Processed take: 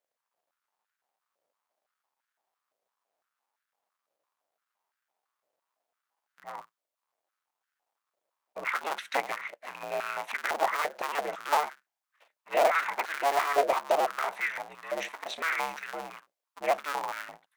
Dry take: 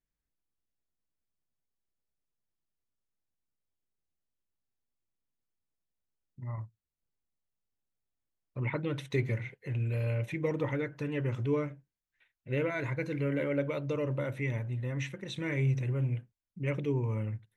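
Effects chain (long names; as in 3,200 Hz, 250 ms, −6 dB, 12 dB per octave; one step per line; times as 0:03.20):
sub-harmonics by changed cycles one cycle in 2, inverted
high-pass on a step sequencer 5.9 Hz 590–1,500 Hz
level +3 dB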